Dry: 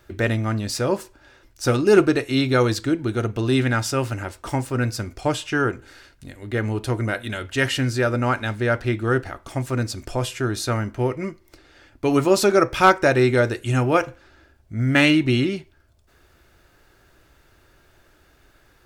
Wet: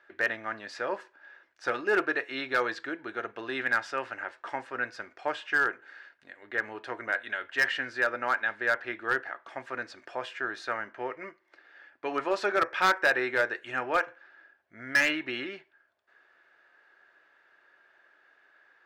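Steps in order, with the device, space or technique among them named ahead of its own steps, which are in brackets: megaphone (band-pass 620–2600 Hz; peaking EQ 1.7 kHz +10 dB 0.29 oct; hard clipper -12.5 dBFS, distortion -12 dB); trim -5 dB

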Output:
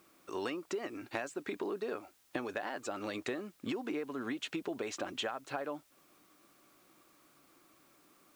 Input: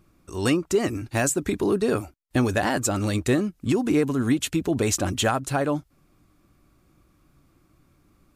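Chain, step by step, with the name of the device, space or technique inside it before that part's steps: baby monitor (band-pass 400–3500 Hz; compression 10:1, threshold -36 dBFS, peak gain reduction 17.5 dB; white noise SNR 28 dB); trim +1.5 dB

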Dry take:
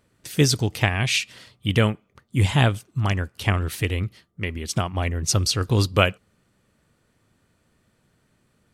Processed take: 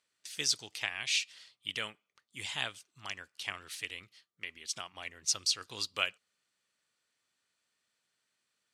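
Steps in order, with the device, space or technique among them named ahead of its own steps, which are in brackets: piezo pickup straight into a mixer (low-pass 5.3 kHz 12 dB/octave; differentiator)

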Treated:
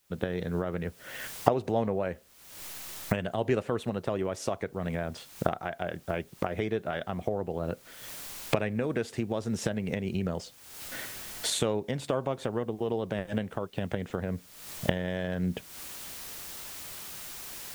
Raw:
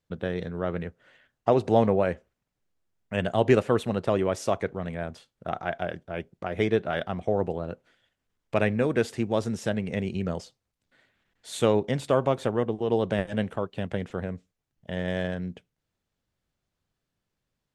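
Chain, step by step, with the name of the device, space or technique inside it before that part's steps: cheap recorder with automatic gain (white noise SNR 36 dB; recorder AGC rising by 54 dB/s); trim -7.5 dB

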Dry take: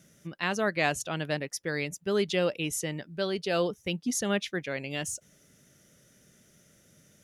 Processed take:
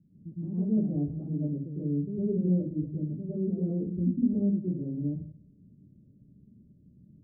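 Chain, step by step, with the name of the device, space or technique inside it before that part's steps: next room (low-pass 270 Hz 24 dB/octave; reverberation RT60 0.45 s, pre-delay 100 ms, DRR -8.5 dB); trim -1 dB

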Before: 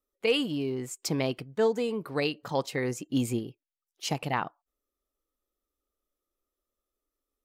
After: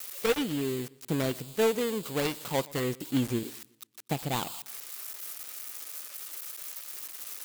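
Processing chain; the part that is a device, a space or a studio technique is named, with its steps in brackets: 3.43–4.07 s: steep high-pass 210 Hz 72 dB/octave; budget class-D amplifier (dead-time distortion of 0.25 ms; zero-crossing glitches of -24 dBFS); modulated delay 121 ms, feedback 42%, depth 94 cents, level -23 dB

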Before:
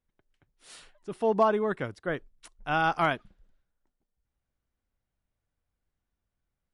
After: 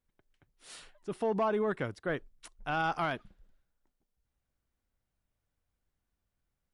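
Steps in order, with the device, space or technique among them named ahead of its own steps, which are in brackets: soft clipper into limiter (saturation -15.5 dBFS, distortion -20 dB; peak limiter -23 dBFS, peak gain reduction 6 dB)

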